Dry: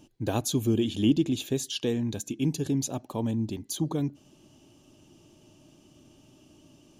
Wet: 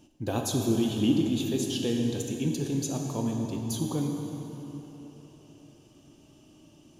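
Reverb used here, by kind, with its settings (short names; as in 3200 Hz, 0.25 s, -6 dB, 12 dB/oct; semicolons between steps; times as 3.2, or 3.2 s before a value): plate-style reverb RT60 3.8 s, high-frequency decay 0.65×, DRR 1 dB; gain -2.5 dB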